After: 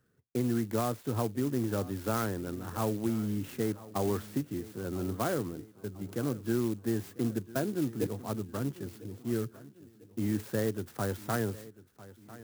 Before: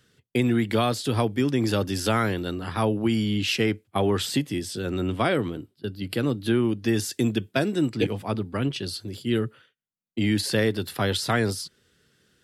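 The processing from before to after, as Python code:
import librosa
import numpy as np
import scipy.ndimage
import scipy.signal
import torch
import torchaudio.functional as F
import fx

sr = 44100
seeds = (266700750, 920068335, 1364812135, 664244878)

y = fx.band_shelf(x, sr, hz=4400.0, db=-15.5, octaves=2.3)
y = fx.echo_feedback(y, sr, ms=998, feedback_pct=47, wet_db=-18.5)
y = fx.clock_jitter(y, sr, seeds[0], jitter_ms=0.061)
y = F.gain(torch.from_numpy(y), -7.5).numpy()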